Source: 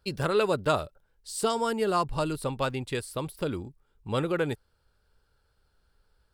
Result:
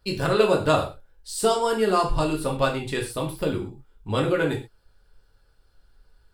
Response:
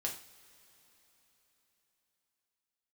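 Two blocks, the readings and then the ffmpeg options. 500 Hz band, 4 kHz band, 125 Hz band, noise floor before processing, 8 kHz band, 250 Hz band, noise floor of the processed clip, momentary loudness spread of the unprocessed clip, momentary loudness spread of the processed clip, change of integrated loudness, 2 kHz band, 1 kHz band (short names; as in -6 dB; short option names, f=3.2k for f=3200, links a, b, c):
+5.5 dB, +5.5 dB, +4.5 dB, -71 dBFS, +4.5 dB, +5.0 dB, -62 dBFS, 13 LU, 13 LU, +5.0 dB, +5.5 dB, +4.5 dB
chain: -filter_complex "[0:a]lowshelf=f=65:g=7[a];[1:a]atrim=start_sample=2205,atrim=end_sample=6174[b];[a][b]afir=irnorm=-1:irlink=0,volume=4dB"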